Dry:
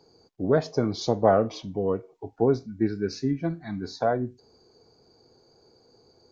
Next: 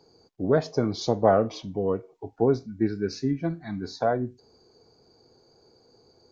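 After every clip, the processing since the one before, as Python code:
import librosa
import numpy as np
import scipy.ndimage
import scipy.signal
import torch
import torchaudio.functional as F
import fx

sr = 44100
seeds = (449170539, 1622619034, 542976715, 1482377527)

y = x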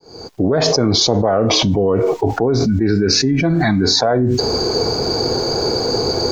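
y = fx.fade_in_head(x, sr, length_s=1.18)
y = fx.peak_eq(y, sr, hz=190.0, db=-2.5, octaves=1.5)
y = fx.env_flatten(y, sr, amount_pct=100)
y = F.gain(torch.from_numpy(y), 1.5).numpy()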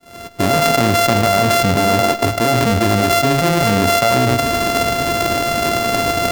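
y = np.r_[np.sort(x[:len(x) // 64 * 64].reshape(-1, 64), axis=1).ravel(), x[len(x) // 64 * 64:]]
y = y + 10.0 ** (-13.5 / 20.0) * np.pad(y, (int(106 * sr / 1000.0), 0))[:len(y)]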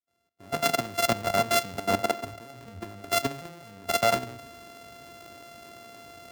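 y = fx.highpass(x, sr, hz=110.0, slope=6)
y = fx.level_steps(y, sr, step_db=14)
y = fx.band_widen(y, sr, depth_pct=100)
y = F.gain(torch.from_numpy(y), -9.0).numpy()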